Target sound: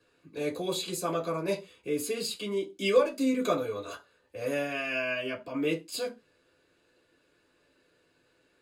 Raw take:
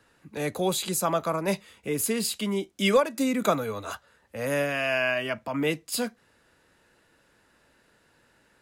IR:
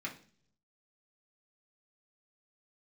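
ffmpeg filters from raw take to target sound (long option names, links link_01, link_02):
-filter_complex "[1:a]atrim=start_sample=2205,afade=type=out:start_time=0.33:duration=0.01,atrim=end_sample=14994,asetrate=83790,aresample=44100[link_01];[0:a][link_01]afir=irnorm=-1:irlink=0"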